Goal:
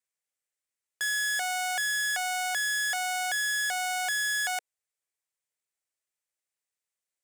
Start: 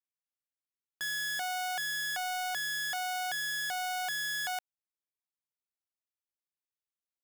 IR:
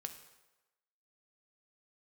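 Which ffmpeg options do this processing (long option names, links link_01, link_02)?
-af "equalizer=frequency=250:width_type=o:width=1:gain=-7,equalizer=frequency=500:width_type=o:width=1:gain=8,equalizer=frequency=2000:width_type=o:width=1:gain=8,equalizer=frequency=8000:width_type=o:width=1:gain=11,volume=-1dB"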